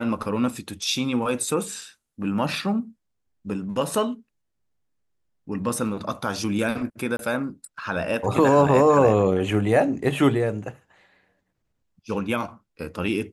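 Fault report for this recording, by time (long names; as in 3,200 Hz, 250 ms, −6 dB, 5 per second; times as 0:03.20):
0:07.17–0:07.19: drop-out 22 ms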